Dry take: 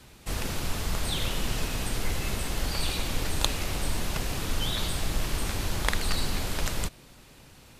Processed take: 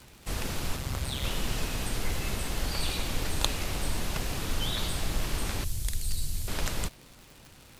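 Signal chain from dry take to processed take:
0:00.76–0:01.24: ring modulation 67 Hz
0:05.64–0:06.48: drawn EQ curve 120 Hz 0 dB, 190 Hz −11 dB, 1,100 Hz −24 dB, 8,800 Hz +2 dB
surface crackle 150 per second −37 dBFS
level −1.5 dB

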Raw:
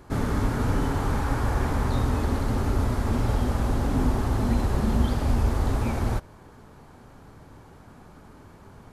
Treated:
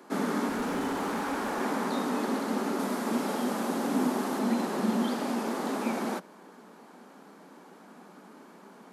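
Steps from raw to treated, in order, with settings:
Butterworth high-pass 180 Hz 72 dB per octave
0:00.49–0:01.60: gain into a clipping stage and back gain 27 dB
0:02.79–0:04.39: high-shelf EQ 8,200 Hz +5.5 dB

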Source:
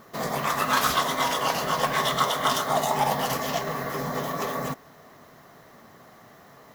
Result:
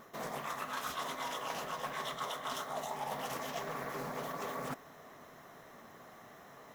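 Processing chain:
parametric band 100 Hz −5 dB 2.2 octaves
notch filter 4,600 Hz, Q 5.9
reversed playback
downward compressor 6 to 1, threshold −34 dBFS, peak gain reduction 15 dB
reversed playback
highs frequency-modulated by the lows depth 0.38 ms
level −3 dB

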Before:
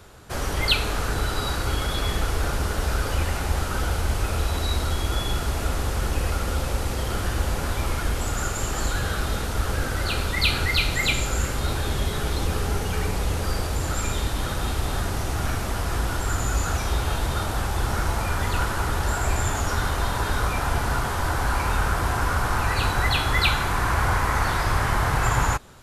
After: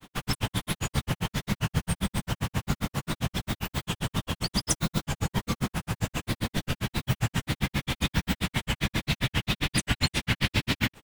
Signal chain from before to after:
wrong playback speed 33 rpm record played at 78 rpm
granular cloud 86 ms, grains 7.5 per second, pitch spread up and down by 3 semitones

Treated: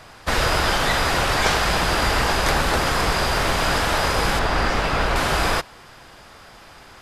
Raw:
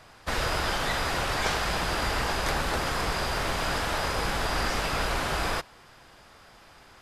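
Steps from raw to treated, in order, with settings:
0:04.39–0:05.16: low-pass filter 3,000 Hz 6 dB per octave
level +8 dB

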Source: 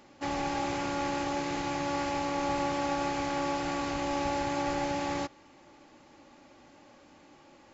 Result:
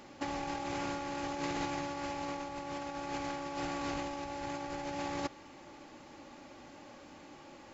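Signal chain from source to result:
compressor whose output falls as the input rises −35 dBFS, ratio −0.5
level −1.5 dB

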